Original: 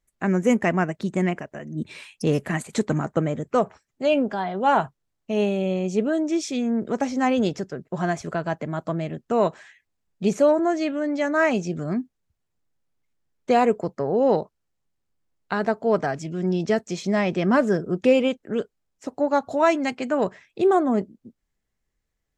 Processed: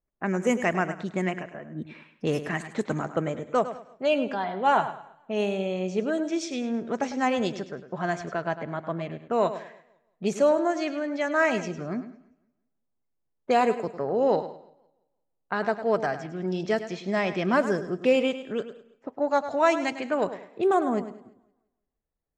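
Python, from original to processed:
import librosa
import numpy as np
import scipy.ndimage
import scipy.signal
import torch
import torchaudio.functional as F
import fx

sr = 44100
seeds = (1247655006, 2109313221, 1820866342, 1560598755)

y = fx.env_lowpass(x, sr, base_hz=870.0, full_db=-17.5)
y = fx.low_shelf(y, sr, hz=350.0, db=-7.5)
y = fx.echo_feedback(y, sr, ms=103, feedback_pct=29, wet_db=-12)
y = fx.echo_warbled(y, sr, ms=170, feedback_pct=34, rate_hz=2.8, cents=84, wet_db=-23.5)
y = y * librosa.db_to_amplitude(-1.0)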